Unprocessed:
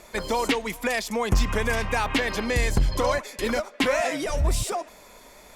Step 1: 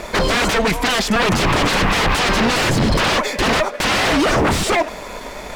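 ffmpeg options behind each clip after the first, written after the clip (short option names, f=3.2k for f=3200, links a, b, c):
-af "aeval=exprs='0.224*sin(PI/2*6.31*val(0)/0.224)':c=same,aemphasis=mode=reproduction:type=50fm,aeval=exprs='sgn(val(0))*max(abs(val(0))-0.01,0)':c=same,volume=1.5dB"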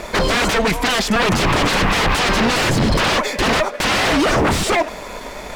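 -af anull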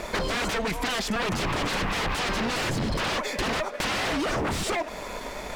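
-af "acompressor=threshold=-21dB:ratio=6,volume=-4.5dB"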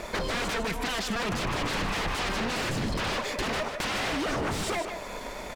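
-af "aecho=1:1:153:0.398,volume=-3dB"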